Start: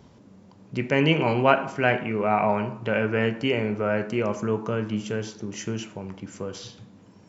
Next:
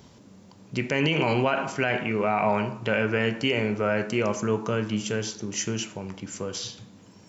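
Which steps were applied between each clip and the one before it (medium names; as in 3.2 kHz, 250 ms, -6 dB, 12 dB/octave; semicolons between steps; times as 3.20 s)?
treble shelf 3 kHz +10.5 dB; peak limiter -12 dBFS, peak gain reduction 11 dB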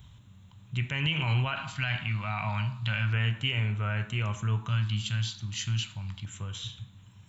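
FFT filter 110 Hz 0 dB, 240 Hz -22 dB, 470 Hz -28 dB, 1.1 kHz -13 dB, 2.2 kHz -12 dB, 3.9 kHz 0 dB, 5.6 kHz -19 dB, 8.6 kHz -7 dB; LFO notch square 0.32 Hz 430–4600 Hz; trim +7 dB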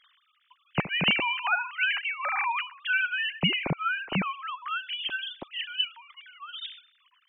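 formants replaced by sine waves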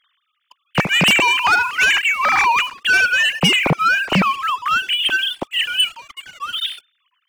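waveshaping leveller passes 3; trim +4 dB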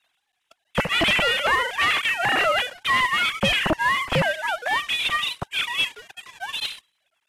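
CVSD coder 64 kbps; ring modulator with a swept carrier 420 Hz, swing 20%, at 3 Hz; trim -2 dB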